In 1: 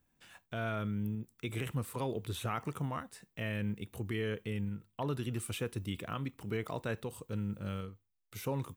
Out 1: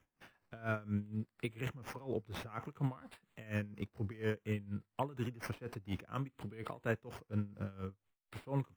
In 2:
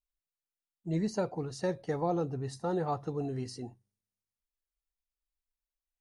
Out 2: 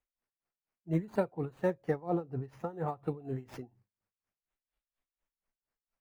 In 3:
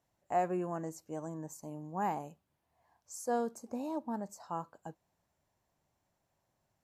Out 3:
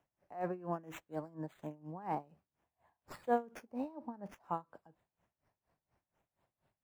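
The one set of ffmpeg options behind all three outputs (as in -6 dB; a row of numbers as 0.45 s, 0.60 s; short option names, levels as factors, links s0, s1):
-filter_complex "[0:a]acrossover=split=260|1400|3100[s0][s1][s2][s3];[s3]acrusher=samples=10:mix=1:aa=0.000001:lfo=1:lforange=6:lforate=0.57[s4];[s0][s1][s2][s4]amix=inputs=4:normalize=0,aeval=exprs='val(0)*pow(10,-21*(0.5-0.5*cos(2*PI*4.2*n/s))/20)':c=same,volume=1.41"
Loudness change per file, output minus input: -3.0 LU, -1.5 LU, -3.5 LU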